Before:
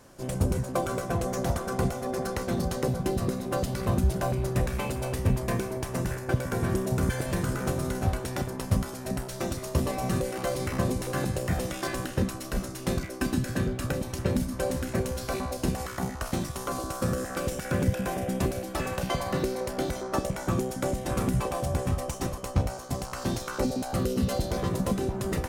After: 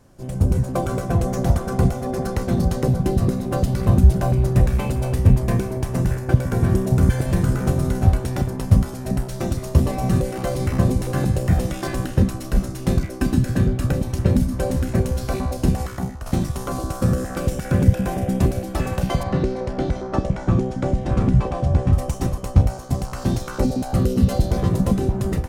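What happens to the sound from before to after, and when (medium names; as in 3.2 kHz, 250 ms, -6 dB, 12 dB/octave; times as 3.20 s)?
15.82–16.26 s: fade out, to -11 dB
19.23–21.93 s: distance through air 110 m
whole clip: peaking EQ 760 Hz +2.5 dB 0.28 oct; level rider gain up to 7 dB; bass shelf 260 Hz +12 dB; trim -5.5 dB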